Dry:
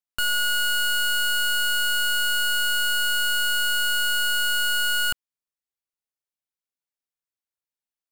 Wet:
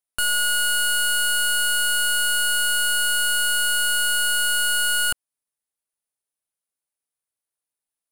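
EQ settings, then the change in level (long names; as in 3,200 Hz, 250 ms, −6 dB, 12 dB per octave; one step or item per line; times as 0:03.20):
parametric band 620 Hz +3.5 dB 1.6 octaves
parametric band 9,800 Hz +14.5 dB 0.34 octaves
0.0 dB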